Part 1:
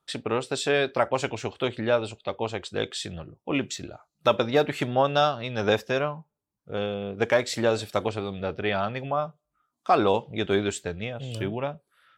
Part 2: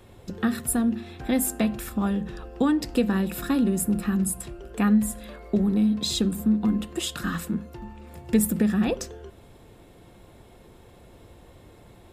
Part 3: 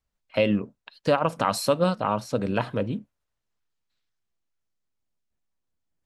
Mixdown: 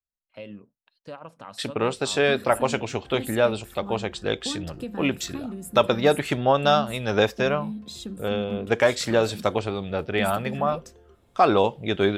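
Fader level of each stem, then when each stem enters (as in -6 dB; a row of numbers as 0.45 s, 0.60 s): +2.5 dB, -12.0 dB, -18.0 dB; 1.50 s, 1.85 s, 0.00 s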